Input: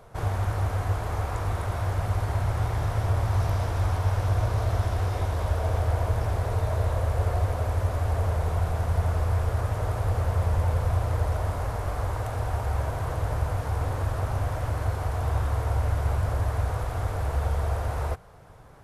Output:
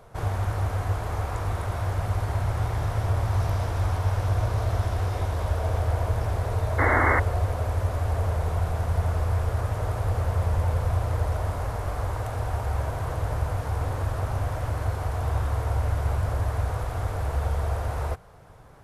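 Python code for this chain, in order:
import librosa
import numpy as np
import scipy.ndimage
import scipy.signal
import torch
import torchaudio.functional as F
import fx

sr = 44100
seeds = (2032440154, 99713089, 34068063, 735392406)

y = fx.spec_paint(x, sr, seeds[0], shape='noise', start_s=6.78, length_s=0.42, low_hz=240.0, high_hz=2200.0, level_db=-22.0)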